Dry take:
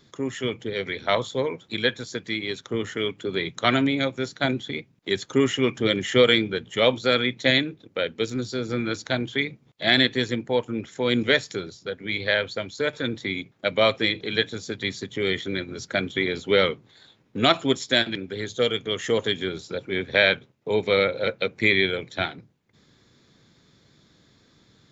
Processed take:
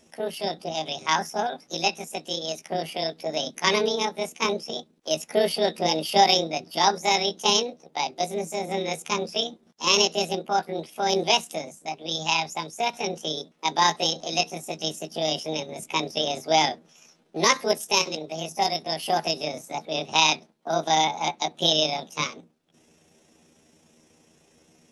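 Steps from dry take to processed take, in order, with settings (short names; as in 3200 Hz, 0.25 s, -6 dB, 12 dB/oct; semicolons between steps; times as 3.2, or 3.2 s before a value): delay-line pitch shifter +8 st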